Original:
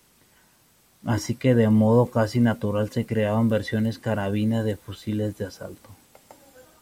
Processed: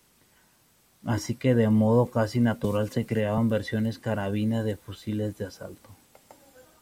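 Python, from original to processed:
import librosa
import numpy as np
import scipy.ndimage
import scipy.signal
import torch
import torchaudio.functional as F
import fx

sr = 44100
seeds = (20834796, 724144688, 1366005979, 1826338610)

y = fx.band_squash(x, sr, depth_pct=100, at=(2.64, 3.38))
y = y * librosa.db_to_amplitude(-3.0)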